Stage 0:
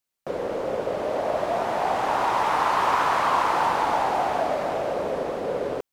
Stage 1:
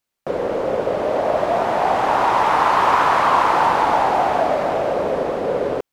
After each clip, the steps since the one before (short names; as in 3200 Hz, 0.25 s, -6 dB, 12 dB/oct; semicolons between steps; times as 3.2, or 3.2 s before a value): high shelf 4400 Hz -6 dB; gain +6.5 dB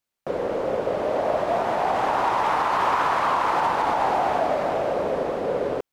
limiter -9 dBFS, peak gain reduction 5 dB; gain -4 dB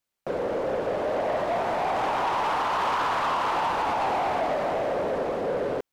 soft clip -21 dBFS, distortion -13 dB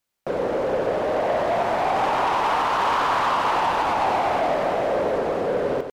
echo 93 ms -7.5 dB; gain +3.5 dB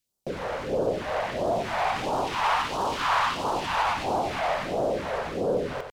phaser stages 2, 1.5 Hz, lowest notch 270–2000 Hz